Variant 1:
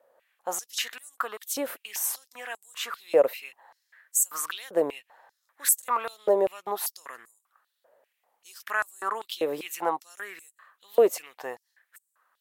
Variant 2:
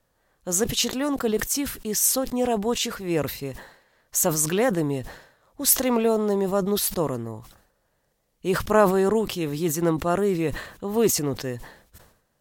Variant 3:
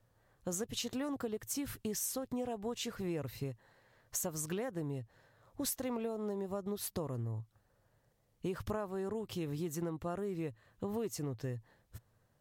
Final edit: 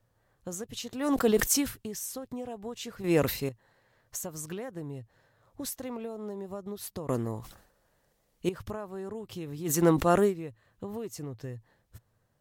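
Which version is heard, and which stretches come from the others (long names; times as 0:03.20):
3
0:01.05–0:01.66: punch in from 2, crossfade 0.16 s
0:03.04–0:03.49: punch in from 2
0:07.09–0:08.49: punch in from 2
0:09.69–0:10.29: punch in from 2, crossfade 0.10 s
not used: 1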